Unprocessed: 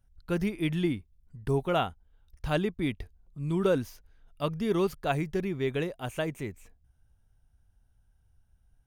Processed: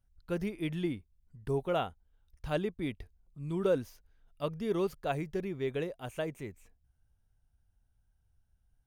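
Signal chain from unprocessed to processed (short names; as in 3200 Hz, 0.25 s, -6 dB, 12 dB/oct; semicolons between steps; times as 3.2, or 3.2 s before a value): dynamic EQ 510 Hz, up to +5 dB, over -40 dBFS, Q 1.7; gain -6.5 dB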